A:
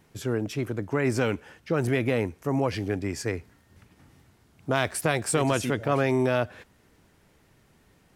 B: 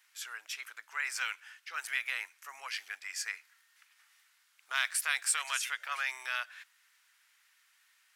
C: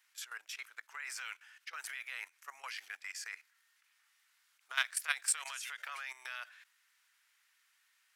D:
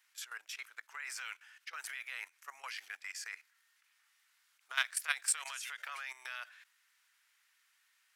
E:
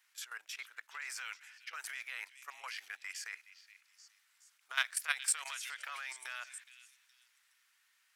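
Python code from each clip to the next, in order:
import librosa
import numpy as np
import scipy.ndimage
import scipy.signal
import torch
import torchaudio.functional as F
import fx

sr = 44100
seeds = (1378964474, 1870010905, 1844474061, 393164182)

y1 = scipy.signal.sosfilt(scipy.signal.butter(4, 1400.0, 'highpass', fs=sr, output='sos'), x)
y2 = fx.level_steps(y1, sr, step_db=15)
y2 = F.gain(torch.from_numpy(y2), 1.5).numpy()
y3 = y2
y4 = fx.echo_stepped(y3, sr, ms=419, hz=3200.0, octaves=0.7, feedback_pct=70, wet_db=-11)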